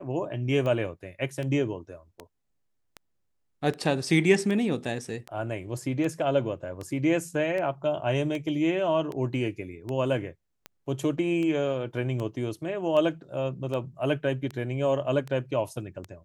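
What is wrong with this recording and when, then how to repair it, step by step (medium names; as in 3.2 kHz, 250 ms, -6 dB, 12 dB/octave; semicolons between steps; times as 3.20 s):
tick 78 rpm -22 dBFS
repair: de-click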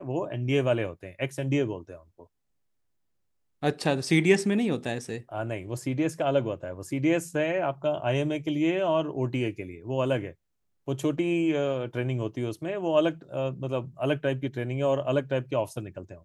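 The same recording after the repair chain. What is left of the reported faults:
nothing left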